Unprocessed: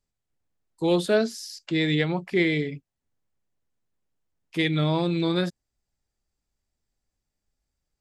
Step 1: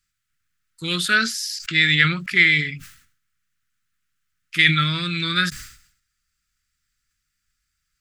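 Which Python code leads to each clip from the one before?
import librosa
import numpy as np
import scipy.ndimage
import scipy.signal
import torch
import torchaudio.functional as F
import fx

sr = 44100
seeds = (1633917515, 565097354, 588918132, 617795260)

y = fx.curve_eq(x, sr, hz=(150.0, 860.0, 1300.0, 3800.0), db=(0, -23, 14, 9))
y = fx.sustainer(y, sr, db_per_s=93.0)
y = y * 10.0 ** (1.5 / 20.0)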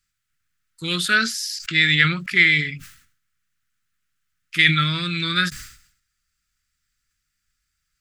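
y = fx.end_taper(x, sr, db_per_s=360.0)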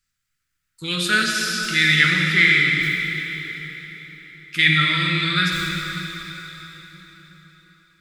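y = fx.rev_plate(x, sr, seeds[0], rt60_s=4.3, hf_ratio=0.9, predelay_ms=0, drr_db=-1.0)
y = y * 10.0 ** (-1.5 / 20.0)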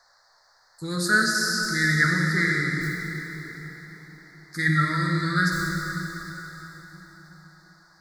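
y = fx.dmg_noise_band(x, sr, seeds[1], low_hz=620.0, high_hz=4800.0, level_db=-57.0)
y = scipy.signal.sosfilt(scipy.signal.ellip(3, 1.0, 80, [1800.0, 4400.0], 'bandstop', fs=sr, output='sos'), y)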